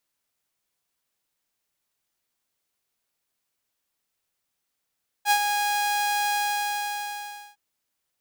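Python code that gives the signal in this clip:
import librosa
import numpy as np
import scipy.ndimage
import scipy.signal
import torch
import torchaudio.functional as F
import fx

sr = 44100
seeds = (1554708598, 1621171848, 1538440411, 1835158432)

y = fx.adsr_tone(sr, wave='saw', hz=824.0, attack_ms=60.0, decay_ms=70.0, sustain_db=-6.5, held_s=1.08, release_ms=1230.0, level_db=-13.5)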